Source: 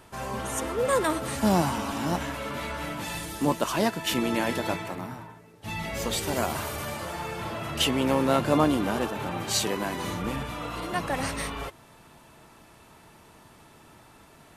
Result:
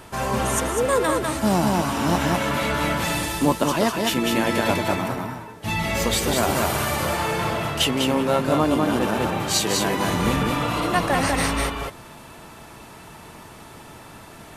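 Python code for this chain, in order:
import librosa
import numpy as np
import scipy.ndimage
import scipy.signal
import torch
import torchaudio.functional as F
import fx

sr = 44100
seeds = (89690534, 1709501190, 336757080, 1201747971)

p1 = x + fx.echo_single(x, sr, ms=199, db=-3.5, dry=0)
p2 = fx.rider(p1, sr, range_db=4, speed_s=0.5)
y = F.gain(torch.from_numpy(p2), 5.0).numpy()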